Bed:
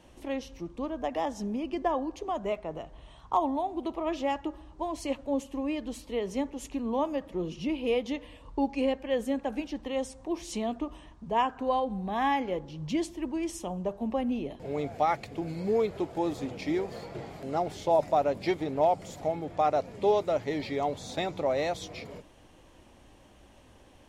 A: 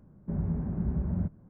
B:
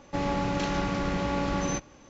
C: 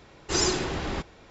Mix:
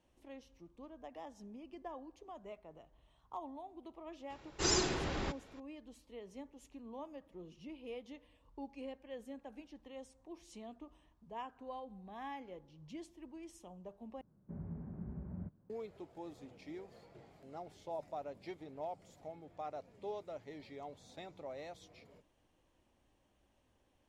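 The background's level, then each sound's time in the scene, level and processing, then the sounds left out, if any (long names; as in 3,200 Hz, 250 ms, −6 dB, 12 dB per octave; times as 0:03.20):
bed −18.5 dB
0:04.30: mix in C −7 dB
0:14.21: overwrite with A −12.5 dB + low-shelf EQ 62 Hz −11 dB
not used: B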